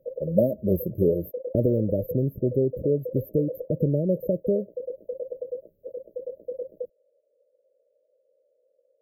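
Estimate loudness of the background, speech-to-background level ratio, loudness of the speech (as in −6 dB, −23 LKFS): −37.0 LKFS, 11.0 dB, −26.0 LKFS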